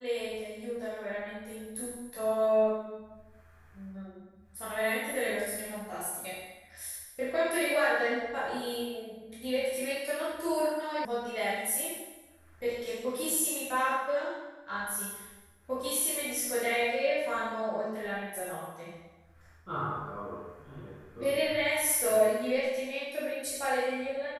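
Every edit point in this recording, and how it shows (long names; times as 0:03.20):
0:11.05: cut off before it has died away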